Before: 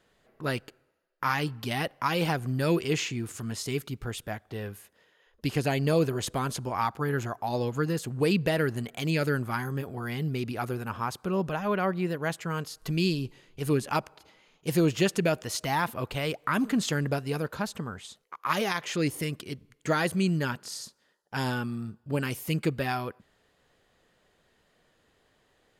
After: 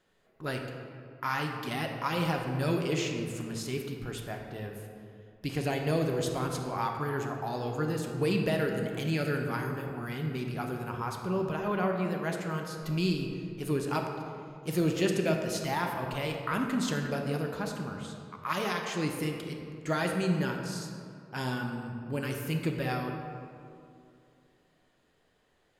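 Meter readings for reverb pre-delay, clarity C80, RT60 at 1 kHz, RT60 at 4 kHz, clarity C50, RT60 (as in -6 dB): 3 ms, 5.0 dB, 2.4 s, 1.3 s, 4.0 dB, 2.5 s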